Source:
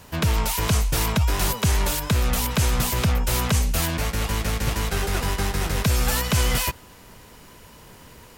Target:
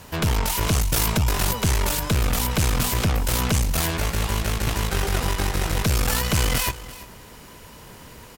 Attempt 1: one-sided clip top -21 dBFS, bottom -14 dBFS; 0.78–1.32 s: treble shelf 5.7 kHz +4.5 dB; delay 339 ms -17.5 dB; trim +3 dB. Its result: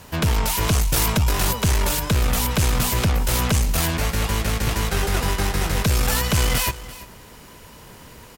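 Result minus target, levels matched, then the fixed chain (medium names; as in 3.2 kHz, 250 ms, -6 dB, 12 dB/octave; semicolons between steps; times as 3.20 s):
one-sided clip: distortion -4 dB
one-sided clip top -29 dBFS, bottom -14 dBFS; 0.78–1.32 s: treble shelf 5.7 kHz +4.5 dB; delay 339 ms -17.5 dB; trim +3 dB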